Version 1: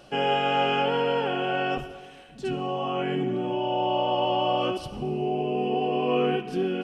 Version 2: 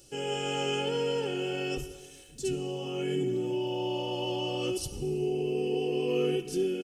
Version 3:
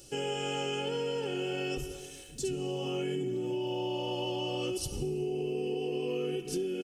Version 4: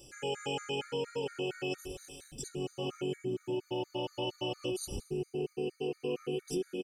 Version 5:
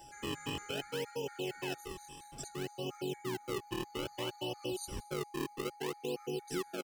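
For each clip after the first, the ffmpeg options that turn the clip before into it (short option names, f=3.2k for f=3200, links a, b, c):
-af "firequalizer=gain_entry='entry(270,0);entry(760,-15);entry(6500,14)':delay=0.05:min_phase=1,dynaudnorm=f=130:g=5:m=4dB,aecho=1:1:2.3:0.67,volume=-5.5dB"
-af "acompressor=threshold=-34dB:ratio=6,volume=3.5dB"
-af "afftfilt=real='re*gt(sin(2*PI*4.3*pts/sr)*(1-2*mod(floor(b*sr/1024/1200),2)),0)':imag='im*gt(sin(2*PI*4.3*pts/sr)*(1-2*mod(floor(b*sr/1024/1200),2)),0)':win_size=1024:overlap=0.75"
-filter_complex "[0:a]acrossover=split=110|980|2000[a][b][c][d];[b]acrusher=samples=35:mix=1:aa=0.000001:lfo=1:lforange=56:lforate=0.6[e];[a][e][c][d]amix=inputs=4:normalize=0,aeval=exprs='val(0)+0.00316*sin(2*PI*830*n/s)':c=same,asplit=2[f][g];[g]adelay=699.7,volume=-28dB,highshelf=f=4k:g=-15.7[h];[f][h]amix=inputs=2:normalize=0,volume=-3dB"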